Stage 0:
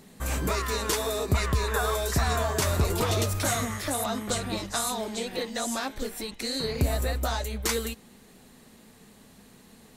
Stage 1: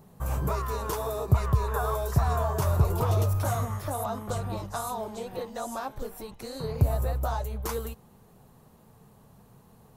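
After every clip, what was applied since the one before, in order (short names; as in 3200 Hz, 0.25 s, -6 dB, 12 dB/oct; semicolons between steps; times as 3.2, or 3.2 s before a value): ten-band EQ 125 Hz +10 dB, 250 Hz -9 dB, 1000 Hz +5 dB, 2000 Hz -11 dB, 4000 Hz -9 dB, 8000 Hz -9 dB; gain -1 dB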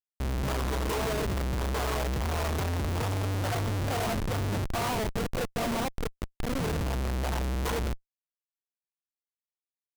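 Schmitt trigger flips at -33 dBFS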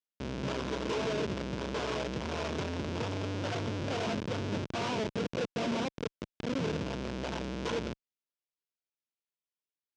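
speaker cabinet 150–5700 Hz, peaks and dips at 770 Hz -8 dB, 1200 Hz -6 dB, 1900 Hz -6 dB, 4300 Hz -4 dB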